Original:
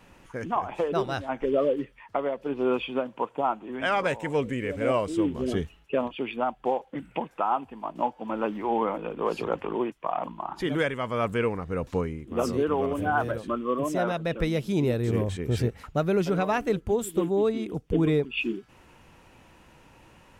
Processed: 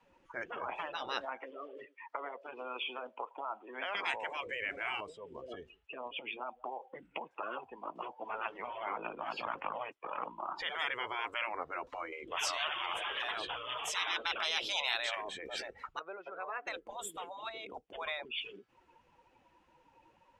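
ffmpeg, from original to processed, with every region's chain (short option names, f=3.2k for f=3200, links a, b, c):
-filter_complex "[0:a]asettb=1/sr,asplit=3[a][b][c];[a]atrim=end=1.254[d];[b]atrim=start=1.25:end=3.95,asetpts=PTS-STARTPTS,afade=t=in:d=0.004:c=qsin,afade=t=out:st=2.696:d=0.004:c=qsin,highpass=f=580:p=1,acompressor=threshold=-31dB:ratio=16:attack=3.2:release=140:knee=1:detection=peak,asplit=2[e][f];[f]adelay=110,lowpass=f=1.6k:p=1,volume=-23dB,asplit=2[g][h];[h]adelay=110,lowpass=f=1.6k:p=1,volume=0.4,asplit=2[i][j];[j]adelay=110,lowpass=f=1.6k:p=1,volume=0.4[k];[e][g][i][k]amix=inputs=4:normalize=0,atrim=end_sample=119070[l];[c]atrim=start=3.946[m];[d][l]acrossfade=d=0.004:c1=hsin:c2=qsin[n];[n][m]acrossfade=d=0.004:c1=qsin:c2=hsin,asettb=1/sr,asplit=3[o][p][q];[o]atrim=end=5.004[r];[p]atrim=start=5:end=7.43,asetpts=PTS-STARTPTS,afade=t=in:d=0.004:c=qsin,afade=t=out:st=2.426:d=0.004:c=qsin,acompressor=threshold=-34dB:ratio=5:attack=3.2:release=140:knee=1:detection=peak,aecho=1:1:185:0.0708,atrim=end_sample=107163[s];[q]atrim=start=7.426[t];[r][s]acrossfade=d=0.004:c1=hsin:c2=qsin[u];[u][t]acrossfade=d=0.004:c1=qsin:c2=hsin,asettb=1/sr,asplit=3[v][w][x];[v]atrim=end=12.124[y];[w]atrim=start=12.12:end=15.15,asetpts=PTS-STARTPTS,afade=t=in:d=0.004:c=qsin,afade=t=out:st=3.026:d=0.004:c=qsin,equalizer=f=3.3k:t=o:w=0.77:g=7,acontrast=73[z];[x]atrim=start=15.146[aa];[y][z]acrossfade=d=0.004:c1=hsin:c2=qsin[ab];[ab][aa]acrossfade=d=0.004:c1=qsin:c2=hsin,asettb=1/sr,asplit=3[ac][ad][ae];[ac]atrim=end=15.994[af];[ad]atrim=start=15.99:end=16.67,asetpts=PTS-STARTPTS,afade=t=in:d=0.004:c=qsin,afade=t=out:st=0.676:d=0.004:c=qsin,acompressor=threshold=-30dB:ratio=5:attack=3.2:release=140:knee=1:detection=peak,highpass=640,lowpass=2.1k[ag];[ae]atrim=start=16.666[ah];[af][ag]acrossfade=d=0.004:c1=hsin:c2=qsin[ai];[ai][ah]acrossfade=d=0.004:c1=qsin:c2=hsin,afftfilt=real='re*lt(hypot(re,im),0.1)':imag='im*lt(hypot(re,im),0.1)':win_size=1024:overlap=0.75,afftdn=nr=17:nf=-47,acrossover=split=410 6800:gain=0.1 1 0.251[aj][ak][al];[aj][ak][al]amix=inputs=3:normalize=0,volume=1.5dB"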